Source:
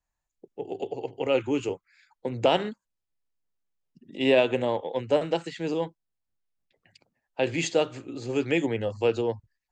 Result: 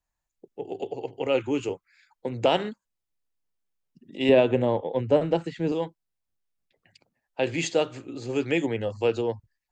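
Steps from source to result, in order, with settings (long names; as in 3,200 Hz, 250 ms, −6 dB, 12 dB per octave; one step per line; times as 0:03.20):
0:04.29–0:05.72: spectral tilt −2.5 dB per octave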